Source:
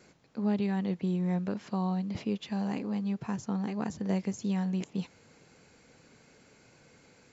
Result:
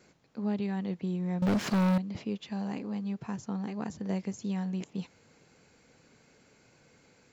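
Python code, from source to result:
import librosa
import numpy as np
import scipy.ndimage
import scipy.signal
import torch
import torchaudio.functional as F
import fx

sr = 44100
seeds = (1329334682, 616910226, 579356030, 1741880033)

y = fx.leveller(x, sr, passes=5, at=(1.42, 1.98))
y = y * librosa.db_to_amplitude(-2.5)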